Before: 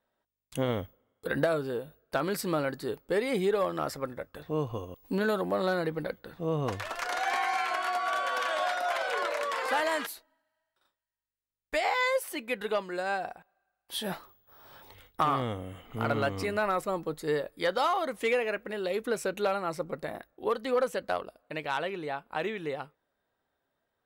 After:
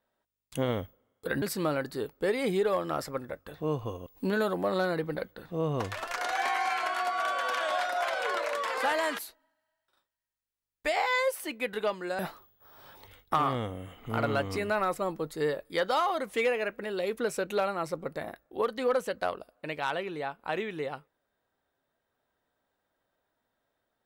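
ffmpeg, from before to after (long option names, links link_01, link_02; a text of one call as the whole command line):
ffmpeg -i in.wav -filter_complex "[0:a]asplit=3[link_01][link_02][link_03];[link_01]atrim=end=1.422[link_04];[link_02]atrim=start=2.298:end=13.072[link_05];[link_03]atrim=start=14.058[link_06];[link_04][link_05]acrossfade=duration=0.004:curve1=hsin:curve2=hsin[link_07];[link_07][link_06]acrossfade=duration=0.004:curve1=hsin:curve2=hsin" out.wav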